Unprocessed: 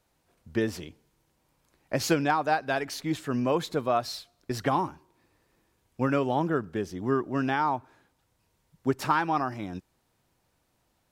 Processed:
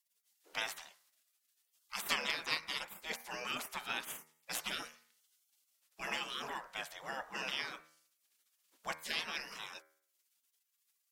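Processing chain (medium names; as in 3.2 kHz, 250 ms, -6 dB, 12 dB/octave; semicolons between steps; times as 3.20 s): spectral gate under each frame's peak -25 dB weak; resonant low shelf 130 Hz -8.5 dB, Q 1.5; de-hum 78.84 Hz, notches 30; trim +7 dB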